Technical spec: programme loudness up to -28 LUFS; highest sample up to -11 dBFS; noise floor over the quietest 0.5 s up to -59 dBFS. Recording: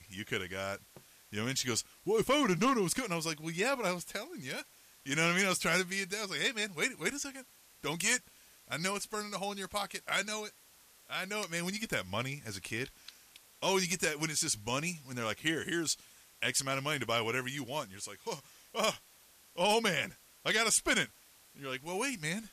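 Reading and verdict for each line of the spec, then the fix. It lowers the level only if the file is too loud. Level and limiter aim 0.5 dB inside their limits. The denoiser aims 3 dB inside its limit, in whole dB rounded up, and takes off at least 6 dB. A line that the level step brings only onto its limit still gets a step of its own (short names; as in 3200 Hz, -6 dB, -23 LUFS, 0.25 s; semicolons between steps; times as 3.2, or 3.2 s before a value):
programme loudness -33.5 LUFS: OK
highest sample -15.5 dBFS: OK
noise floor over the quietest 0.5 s -62 dBFS: OK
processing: none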